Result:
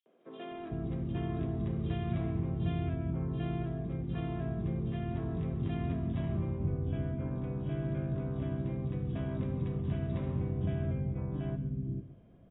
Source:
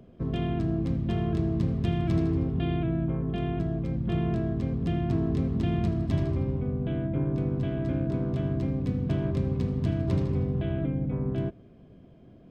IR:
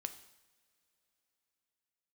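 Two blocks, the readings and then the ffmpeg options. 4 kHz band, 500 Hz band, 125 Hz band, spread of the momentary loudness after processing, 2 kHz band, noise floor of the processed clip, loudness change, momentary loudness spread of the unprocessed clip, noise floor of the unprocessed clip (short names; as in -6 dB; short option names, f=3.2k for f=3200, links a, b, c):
n/a, -7.5 dB, -6.0 dB, 3 LU, -6.0 dB, -55 dBFS, -6.5 dB, 3 LU, -52 dBFS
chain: -filter_complex "[0:a]acrossover=split=320|3800[a][b][c];[b]adelay=60[d];[a]adelay=510[e];[e][d][c]amix=inputs=3:normalize=0,asplit=2[f][g];[1:a]atrim=start_sample=2205,adelay=138[h];[g][h]afir=irnorm=-1:irlink=0,volume=-12.5dB[i];[f][i]amix=inputs=2:normalize=0,volume=-6dB" -ar 16000 -c:a aac -b:a 16k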